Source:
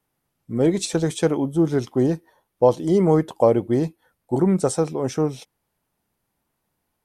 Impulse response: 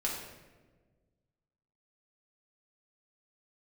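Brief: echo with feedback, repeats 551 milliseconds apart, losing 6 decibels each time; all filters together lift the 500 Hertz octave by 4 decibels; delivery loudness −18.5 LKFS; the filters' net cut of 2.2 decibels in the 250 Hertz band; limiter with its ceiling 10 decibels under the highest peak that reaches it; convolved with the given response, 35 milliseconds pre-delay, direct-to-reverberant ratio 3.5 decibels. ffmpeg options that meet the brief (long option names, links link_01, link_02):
-filter_complex "[0:a]equalizer=frequency=250:width_type=o:gain=-6.5,equalizer=frequency=500:width_type=o:gain=6.5,alimiter=limit=-10.5dB:level=0:latency=1,aecho=1:1:551|1102|1653|2204|2755|3306:0.501|0.251|0.125|0.0626|0.0313|0.0157,asplit=2[link_01][link_02];[1:a]atrim=start_sample=2205,adelay=35[link_03];[link_02][link_03]afir=irnorm=-1:irlink=0,volume=-8.5dB[link_04];[link_01][link_04]amix=inputs=2:normalize=0,volume=1.5dB"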